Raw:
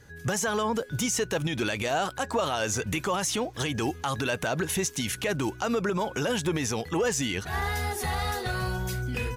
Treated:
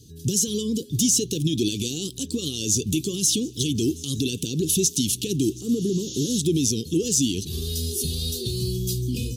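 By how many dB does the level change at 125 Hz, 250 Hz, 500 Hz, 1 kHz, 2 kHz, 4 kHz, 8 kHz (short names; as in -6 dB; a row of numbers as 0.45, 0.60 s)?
+5.5 dB, +7.5 dB, -0.5 dB, under -30 dB, -13.5 dB, +6.0 dB, +9.0 dB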